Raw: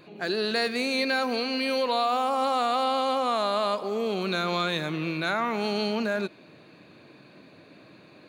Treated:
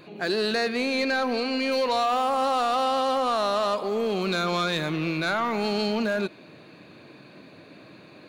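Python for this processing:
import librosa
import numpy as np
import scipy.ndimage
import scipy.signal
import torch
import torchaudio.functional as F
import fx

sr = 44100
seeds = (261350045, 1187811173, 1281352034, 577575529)

y = fx.high_shelf(x, sr, hz=5300.0, db=-9.5, at=(0.55, 1.72))
y = 10.0 ** (-20.5 / 20.0) * np.tanh(y / 10.0 ** (-20.5 / 20.0))
y = y * 10.0 ** (3.5 / 20.0)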